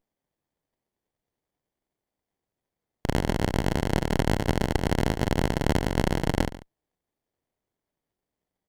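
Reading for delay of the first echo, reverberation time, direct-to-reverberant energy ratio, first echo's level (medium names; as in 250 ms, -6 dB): 142 ms, no reverb, no reverb, -17.0 dB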